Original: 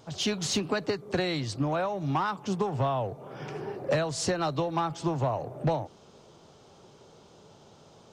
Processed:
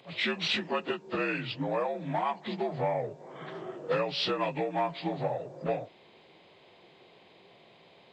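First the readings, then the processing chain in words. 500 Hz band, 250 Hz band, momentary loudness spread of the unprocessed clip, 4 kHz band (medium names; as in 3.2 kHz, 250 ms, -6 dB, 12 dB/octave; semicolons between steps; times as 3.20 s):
-1.5 dB, -4.5 dB, 8 LU, +1.0 dB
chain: frequency axis rescaled in octaves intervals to 84%; bass shelf 380 Hz -11 dB; trim +3.5 dB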